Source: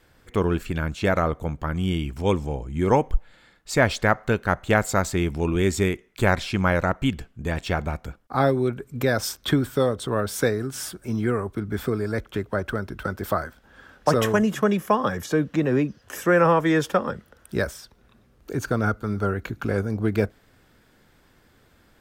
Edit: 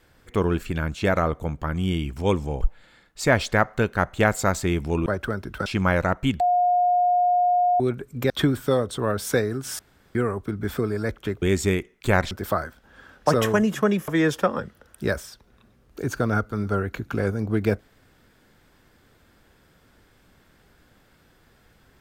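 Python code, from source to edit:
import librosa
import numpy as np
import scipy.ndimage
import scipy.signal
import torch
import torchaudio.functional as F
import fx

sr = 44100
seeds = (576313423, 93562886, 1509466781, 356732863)

y = fx.edit(x, sr, fx.cut(start_s=2.61, length_s=0.5),
    fx.swap(start_s=5.56, length_s=0.89, other_s=12.51, other_length_s=0.6),
    fx.bleep(start_s=7.19, length_s=1.4, hz=715.0, db=-16.5),
    fx.cut(start_s=9.09, length_s=0.3),
    fx.room_tone_fill(start_s=10.88, length_s=0.36),
    fx.cut(start_s=14.88, length_s=1.71), tone=tone)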